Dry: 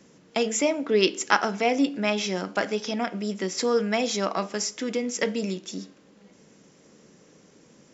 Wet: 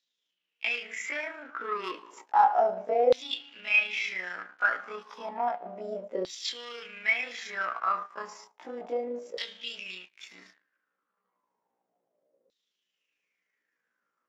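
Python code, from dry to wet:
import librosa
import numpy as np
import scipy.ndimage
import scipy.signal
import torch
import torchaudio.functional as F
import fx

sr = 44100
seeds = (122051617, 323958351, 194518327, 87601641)

y = fx.leveller(x, sr, passes=3)
y = fx.stretch_grains(y, sr, factor=1.8, grain_ms=75.0)
y = fx.filter_lfo_bandpass(y, sr, shape='saw_down', hz=0.32, low_hz=510.0, high_hz=3900.0, q=7.4)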